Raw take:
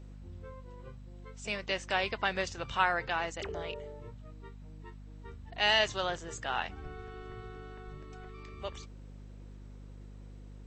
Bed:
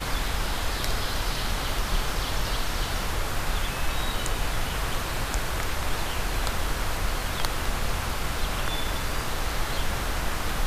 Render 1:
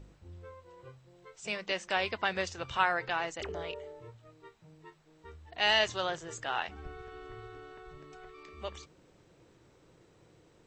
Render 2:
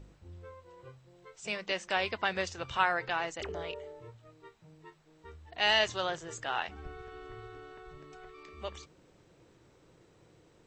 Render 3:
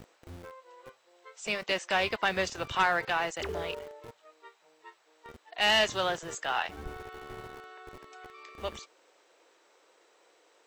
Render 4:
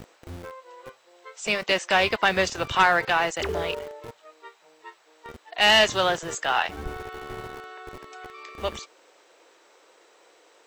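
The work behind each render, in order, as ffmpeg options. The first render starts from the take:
-af "bandreject=f=50:t=h:w=4,bandreject=f=100:t=h:w=4,bandreject=f=150:t=h:w=4,bandreject=f=200:t=h:w=4,bandreject=f=250:t=h:w=4"
-af anull
-filter_complex "[0:a]aeval=exprs='0.237*(cos(1*acos(clip(val(0)/0.237,-1,1)))-cos(1*PI/2))+0.0237*(cos(4*acos(clip(val(0)/0.237,-1,1)))-cos(4*PI/2))+0.0299*(cos(5*acos(clip(val(0)/0.237,-1,1)))-cos(5*PI/2))+0.00841*(cos(6*acos(clip(val(0)/0.237,-1,1)))-cos(6*PI/2))':c=same,acrossover=split=450|1100[a][b][c];[a]aeval=exprs='val(0)*gte(abs(val(0)),0.0075)':c=same[d];[d][b][c]amix=inputs=3:normalize=0"
-af "volume=7dB"

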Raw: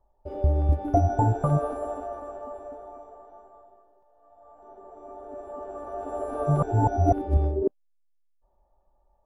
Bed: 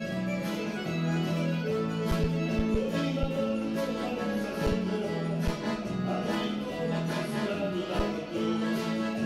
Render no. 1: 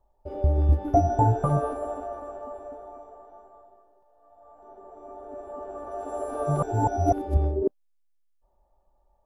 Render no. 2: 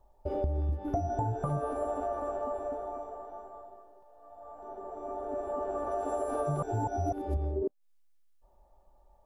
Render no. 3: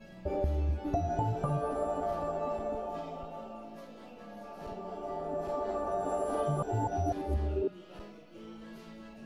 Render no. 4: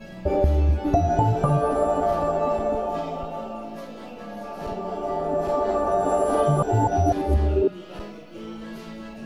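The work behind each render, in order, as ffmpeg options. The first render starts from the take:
-filter_complex "[0:a]asettb=1/sr,asplit=3[a][b][c];[a]atrim=end=0.564[d];[b]atrim=start=0.56:end=1.73,asetpts=PTS-STARTPTS,afade=t=in:d=0.004:c=qsin,afade=t=out:st=1.166:d=0.004:c=qsin,asplit=2[e][f];[f]adelay=16,volume=-6dB[g];[e][g]amix=inputs=2:normalize=0,atrim=end_sample=51597[h];[c]atrim=start=1.726[i];[d][h]acrossfade=d=0.004:c1=hsin:c2=qsin[j];[j][i]acrossfade=d=0.004:c1=qsin:c2=hsin,asettb=1/sr,asplit=3[k][l][m];[k]atrim=end=5.914[n];[l]atrim=start=5.91:end=7.35,asetpts=PTS-STARTPTS,afade=t=in:d=0.004:c=qsin,afade=t=out:st=1.436:d=0.004:c=qsin,bass=f=250:g=-4,treble=f=4k:g=7[o];[m]atrim=start=7.346[p];[n][o]acrossfade=d=0.004:c1=hsin:c2=qsin[q];[q][p]acrossfade=d=0.004:c1=qsin:c2=hsin"
-filter_complex "[0:a]asplit=2[a][b];[b]alimiter=limit=-18dB:level=0:latency=1:release=26,volume=-3dB[c];[a][c]amix=inputs=2:normalize=0,acompressor=threshold=-29dB:ratio=6"
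-filter_complex "[1:a]volume=-18.5dB[a];[0:a][a]amix=inputs=2:normalize=0"
-af "volume=11dB"

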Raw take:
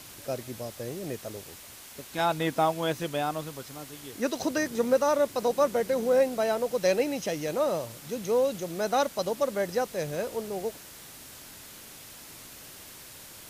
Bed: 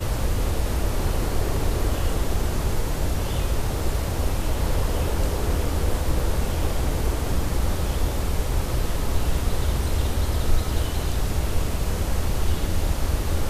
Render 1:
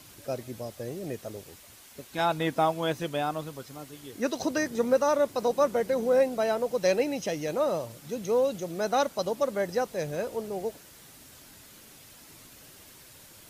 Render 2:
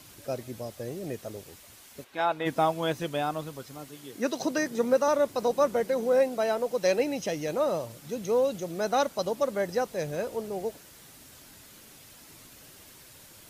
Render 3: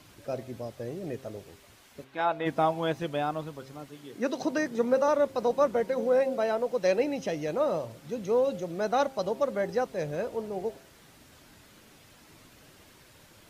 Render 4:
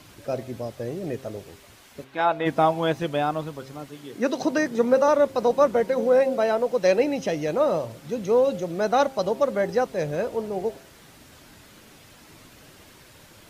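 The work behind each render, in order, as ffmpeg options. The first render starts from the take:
-af "afftdn=nr=6:nf=-47"
-filter_complex "[0:a]asplit=3[a][b][c];[a]afade=t=out:st=2.03:d=0.02[d];[b]bass=f=250:g=-13,treble=f=4k:g=-12,afade=t=in:st=2.03:d=0.02,afade=t=out:st=2.45:d=0.02[e];[c]afade=t=in:st=2.45:d=0.02[f];[d][e][f]amix=inputs=3:normalize=0,asettb=1/sr,asplit=3[g][h][i];[g]atrim=end=3.884[j];[h]atrim=start=3.88:end=5.08,asetpts=PTS-STARTPTS,afade=t=in:d=0.004:c=qsin,afade=t=out:st=1.196:d=0.004:c=qsin,highpass=f=120:w=0.5412,highpass=f=120:w=1.3066[k];[i]atrim=start=5.076[l];[j][k]acrossfade=d=0.004:c1=hsin:c2=qsin[m];[m][l]acrossfade=d=0.004:c1=qsin:c2=hsin,asettb=1/sr,asplit=3[n][o][p];[n]atrim=end=5.844[q];[o]atrim=start=5.84:end=6.98,asetpts=PTS-STARTPTS,afade=t=in:d=0.004:c=qsin,afade=t=out:st=1.136:d=0.004:c=qsin,equalizer=f=74:w=1.2:g=-14.5[r];[p]atrim=start=6.976[s];[q][r]acrossfade=d=0.004:c1=hsin:c2=qsin[t];[t][s]acrossfade=d=0.004:c1=qsin:c2=hsin"
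-af "highshelf=f=5.3k:g=-12,bandreject=f=133.4:t=h:w=4,bandreject=f=266.8:t=h:w=4,bandreject=f=400.2:t=h:w=4,bandreject=f=533.6:t=h:w=4,bandreject=f=667:t=h:w=4,bandreject=f=800.4:t=h:w=4,bandreject=f=933.8:t=h:w=4"
-af "volume=5.5dB"

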